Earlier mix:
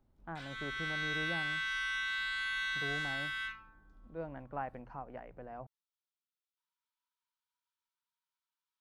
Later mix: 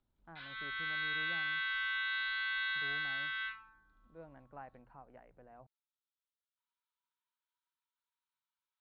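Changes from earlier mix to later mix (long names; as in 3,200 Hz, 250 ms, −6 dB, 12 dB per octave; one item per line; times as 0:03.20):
speech −10.0 dB
master: add elliptic low-pass filter 4,100 Hz, stop band 50 dB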